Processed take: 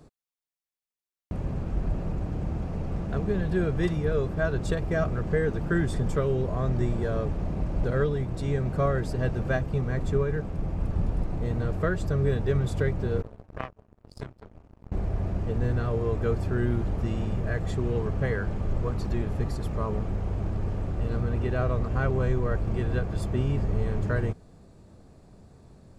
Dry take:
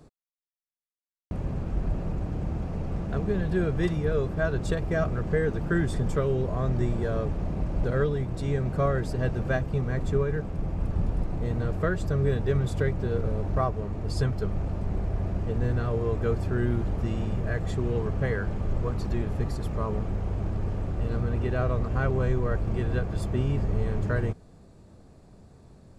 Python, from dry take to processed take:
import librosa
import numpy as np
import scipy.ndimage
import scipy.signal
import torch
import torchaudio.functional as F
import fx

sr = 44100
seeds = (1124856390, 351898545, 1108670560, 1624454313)

y = fx.power_curve(x, sr, exponent=3.0, at=(13.22, 14.92))